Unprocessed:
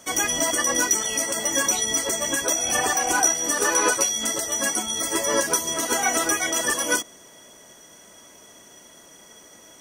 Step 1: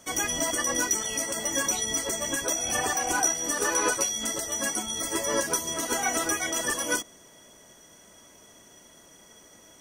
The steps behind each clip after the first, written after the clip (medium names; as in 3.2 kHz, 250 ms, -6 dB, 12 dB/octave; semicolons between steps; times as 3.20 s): bass shelf 150 Hz +7 dB; trim -5 dB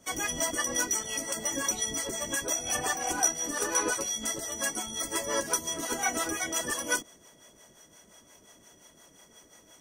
harmonic tremolo 5.7 Hz, depth 70%, crossover 470 Hz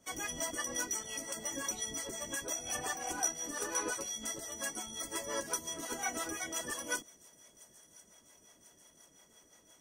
feedback echo behind a high-pass 1042 ms, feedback 61%, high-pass 4.8 kHz, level -20 dB; trim -7.5 dB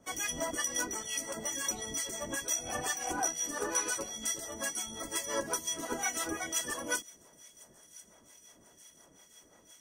harmonic tremolo 2.2 Hz, depth 70%, crossover 1.7 kHz; trim +6.5 dB